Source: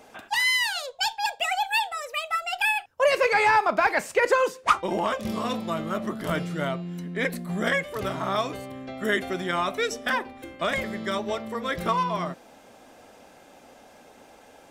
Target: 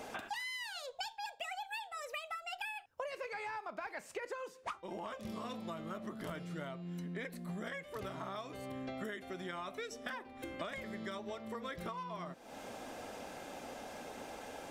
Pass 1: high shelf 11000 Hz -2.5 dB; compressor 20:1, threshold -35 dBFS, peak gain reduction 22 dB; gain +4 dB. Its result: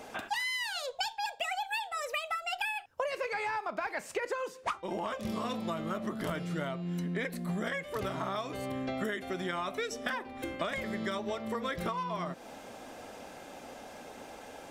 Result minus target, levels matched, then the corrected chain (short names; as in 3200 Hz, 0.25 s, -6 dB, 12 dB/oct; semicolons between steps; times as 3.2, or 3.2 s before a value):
compressor: peak gain reduction -8 dB
high shelf 11000 Hz -2.5 dB; compressor 20:1, threshold -43.5 dBFS, peak gain reduction 30 dB; gain +4 dB